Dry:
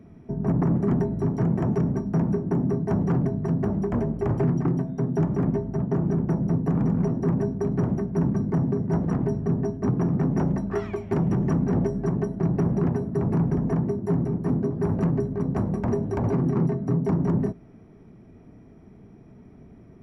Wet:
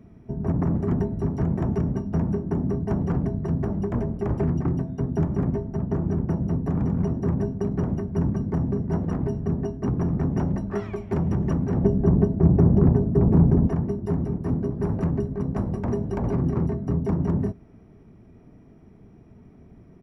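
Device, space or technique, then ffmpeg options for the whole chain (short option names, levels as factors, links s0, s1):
octave pedal: -filter_complex "[0:a]asplit=2[s0][s1];[s1]asetrate=22050,aresample=44100,atempo=2,volume=0.562[s2];[s0][s2]amix=inputs=2:normalize=0,asettb=1/sr,asplit=3[s3][s4][s5];[s3]atrim=end=11.844[s6];[s4]atrim=start=11.84:end=13.67,asetpts=PTS-STARTPTS,afade=t=in:d=0.004:c=qsin,afade=t=out:st=1.826:d=0.004:c=qsin,tiltshelf=f=1300:g=7.5[s7];[s5]atrim=start=13.666[s8];[s6][s7]acrossfade=d=0.004:c1=hsin:c2=qsin[s9];[s9][s8]acrossfade=d=0.004:c1=qsin:c2=hsin,volume=0.794"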